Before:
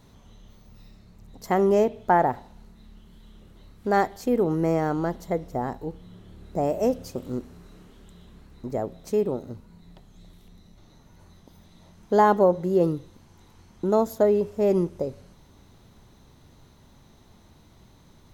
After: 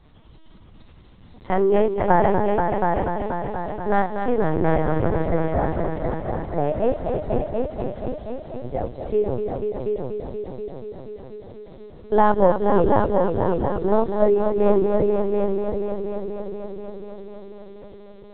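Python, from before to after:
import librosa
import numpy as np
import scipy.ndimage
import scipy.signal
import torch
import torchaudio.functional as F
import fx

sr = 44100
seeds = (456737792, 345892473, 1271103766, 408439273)

y = fx.echo_heads(x, sr, ms=242, heads='all three', feedback_pct=62, wet_db=-7.5)
y = fx.lpc_vocoder(y, sr, seeds[0], excitation='pitch_kept', order=10)
y = F.gain(torch.from_numpy(y), 2.0).numpy()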